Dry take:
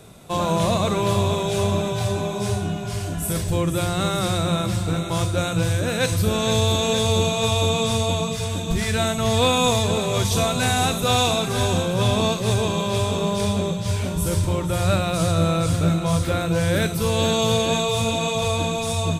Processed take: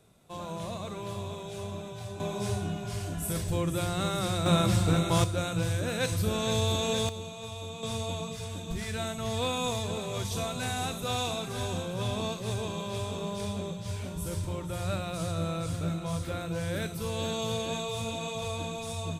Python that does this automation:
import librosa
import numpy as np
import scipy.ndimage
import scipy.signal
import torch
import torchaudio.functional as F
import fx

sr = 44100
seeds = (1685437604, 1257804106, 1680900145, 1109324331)

y = fx.gain(x, sr, db=fx.steps((0.0, -16.5), (2.2, -7.5), (4.46, -1.5), (5.24, -8.0), (7.09, -19.5), (7.83, -12.0)))